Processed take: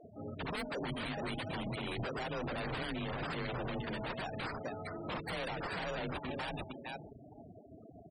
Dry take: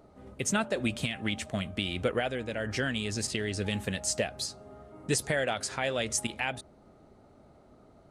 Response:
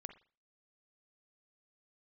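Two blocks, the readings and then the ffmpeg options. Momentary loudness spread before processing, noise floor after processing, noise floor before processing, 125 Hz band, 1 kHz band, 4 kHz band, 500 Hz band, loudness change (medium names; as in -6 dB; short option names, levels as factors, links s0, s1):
5 LU, -56 dBFS, -58 dBFS, -6.0 dB, -2.5 dB, -9.0 dB, -7.5 dB, -8.0 dB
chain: -af "bandreject=f=60:t=h:w=6,bandreject=f=120:t=h:w=6,bandreject=f=180:t=h:w=6,bandreject=f=240:t=h:w=6,bandreject=f=300:t=h:w=6,bandreject=f=360:t=h:w=6,bandreject=f=420:t=h:w=6,aecho=1:1:455|910:0.168|0.0319,acompressor=threshold=0.0224:ratio=12,aresample=16000,aeval=exprs='0.0112*(abs(mod(val(0)/0.0112+3,4)-2)-1)':c=same,aresample=44100,afreqshift=28,acrusher=samples=7:mix=1:aa=0.000001,afftfilt=real='re*gte(hypot(re,im),0.00501)':imag='im*gte(hypot(re,im),0.00501)':win_size=1024:overlap=0.75,volume=2"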